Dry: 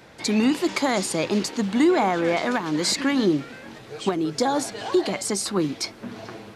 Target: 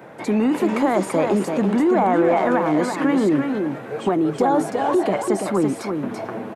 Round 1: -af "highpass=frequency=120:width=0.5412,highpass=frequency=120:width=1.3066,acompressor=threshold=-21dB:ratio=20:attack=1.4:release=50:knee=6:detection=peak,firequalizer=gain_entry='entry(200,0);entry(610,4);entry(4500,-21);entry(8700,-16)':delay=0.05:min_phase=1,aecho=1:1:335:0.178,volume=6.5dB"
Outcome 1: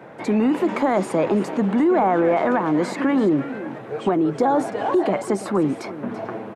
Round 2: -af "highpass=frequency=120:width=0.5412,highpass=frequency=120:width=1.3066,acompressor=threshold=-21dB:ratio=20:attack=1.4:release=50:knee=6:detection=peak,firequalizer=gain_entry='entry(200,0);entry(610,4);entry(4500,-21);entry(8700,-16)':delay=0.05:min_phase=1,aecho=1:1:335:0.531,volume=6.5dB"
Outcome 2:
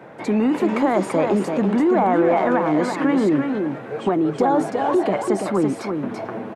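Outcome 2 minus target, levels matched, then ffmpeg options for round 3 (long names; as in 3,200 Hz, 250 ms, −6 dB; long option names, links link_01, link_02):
8,000 Hz band −4.0 dB
-af "highpass=frequency=120:width=0.5412,highpass=frequency=120:width=1.3066,highshelf=frequency=7500:gain=12,acompressor=threshold=-21dB:ratio=20:attack=1.4:release=50:knee=6:detection=peak,firequalizer=gain_entry='entry(200,0);entry(610,4);entry(4500,-21);entry(8700,-16)':delay=0.05:min_phase=1,aecho=1:1:335:0.531,volume=6.5dB"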